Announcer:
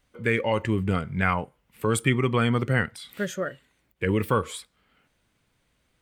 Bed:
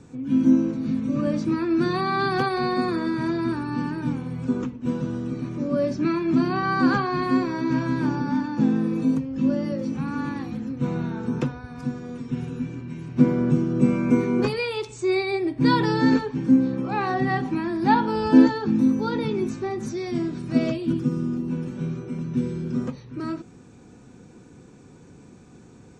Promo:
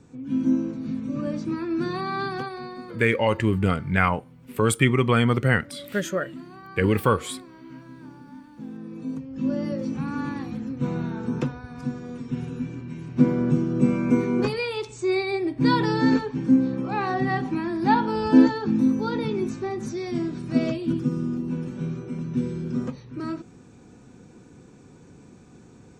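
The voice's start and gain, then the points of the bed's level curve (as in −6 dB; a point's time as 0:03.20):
2.75 s, +3.0 dB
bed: 0:02.21 −4.5 dB
0:03.07 −19.5 dB
0:08.53 −19.5 dB
0:09.63 −1 dB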